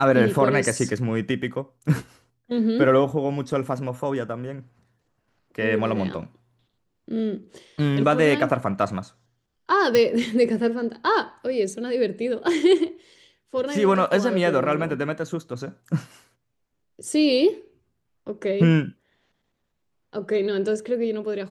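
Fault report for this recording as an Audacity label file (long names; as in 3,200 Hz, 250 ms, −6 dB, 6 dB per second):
9.950000	9.950000	click −7 dBFS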